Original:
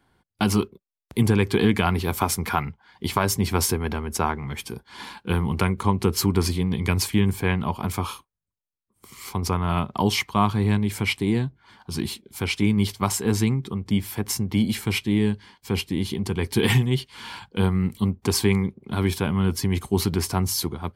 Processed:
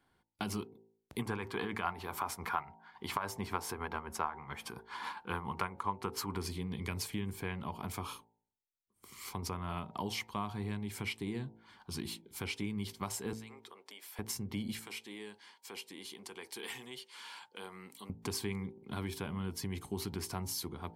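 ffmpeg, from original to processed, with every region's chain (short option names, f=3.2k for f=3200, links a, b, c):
-filter_complex "[0:a]asettb=1/sr,asplit=3[a][b][c];[a]atrim=end=1.194[d];[b]atrim=start=1.19:end=6.37,asetpts=PTS-STARTPTS,afade=t=in:d=0.004:c=qsin,afade=t=out:st=5.176:d=0.004:c=qsin,equalizer=f=1.1k:t=o:w=1.8:g=13,tremolo=f=7.2:d=0.56[e];[c]atrim=start=6.366[f];[d][e]acrossfade=d=0.004:c1=hsin:c2=qsin[g];[g][f]acrossfade=d=0.004:c1=qsin:c2=hsin,asettb=1/sr,asplit=3[h][i][j];[h]atrim=end=13.334[k];[i]atrim=start=13.33:end=14.19,asetpts=PTS-STARTPTS,afade=t=in:d=0.004:c=qsin,afade=t=out:st=0.856:d=0.004:c=qsin,highpass=f=480:w=0.5412,highpass=f=480:w=1.3066,acompressor=threshold=-40dB:ratio=5:attack=3.2:release=140:knee=1:detection=peak[l];[j]atrim=start=14.186[m];[k][l]acrossfade=d=0.004:c1=hsin:c2=qsin[n];[n][m]acrossfade=d=0.004:c1=qsin:c2=hsin,asettb=1/sr,asplit=3[o][p][q];[o]atrim=end=14.794[r];[p]atrim=start=14.79:end=18.1,asetpts=PTS-STARTPTS,afade=t=in:d=0.004:c=qsin,afade=t=out:st=3.306:d=0.004:c=qsin,highpass=470,equalizer=f=7.8k:w=0.98:g=4,acompressor=threshold=-40dB:ratio=2:attack=3.2:release=140:knee=1:detection=peak[s];[q]atrim=start=18.096[t];[r][s]acrossfade=d=0.004:c1=hsin:c2=qsin[u];[u][t]acrossfade=d=0.004:c1=qsin:c2=hsin,lowshelf=f=210:g=-4,bandreject=f=55.34:t=h:w=4,bandreject=f=110.68:t=h:w=4,bandreject=f=166.02:t=h:w=4,bandreject=f=221.36:t=h:w=4,bandreject=f=276.7:t=h:w=4,bandreject=f=332.04:t=h:w=4,bandreject=f=387.38:t=h:w=4,bandreject=f=442.72:t=h:w=4,bandreject=f=498.06:t=h:w=4,bandreject=f=553.4:t=h:w=4,bandreject=f=608.74:t=h:w=4,bandreject=f=664.08:t=h:w=4,bandreject=f=719.42:t=h:w=4,bandreject=f=774.76:t=h:w=4,bandreject=f=830.1:t=h:w=4,bandreject=f=885.44:t=h:w=4,bandreject=f=940.78:t=h:w=4,acompressor=threshold=-30dB:ratio=2.5,volume=-7.5dB"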